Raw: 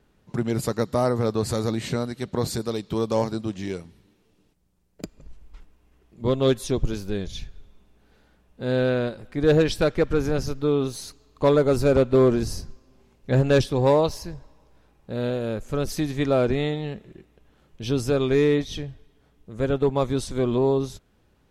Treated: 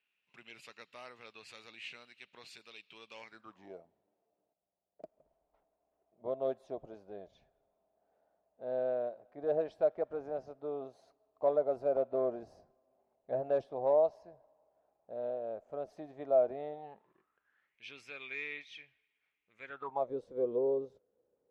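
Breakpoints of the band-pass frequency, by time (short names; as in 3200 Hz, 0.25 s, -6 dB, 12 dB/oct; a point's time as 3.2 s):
band-pass, Q 7.4
3.2 s 2600 Hz
3.72 s 660 Hz
16.72 s 660 Hz
17.82 s 2300 Hz
19.62 s 2300 Hz
20.13 s 490 Hz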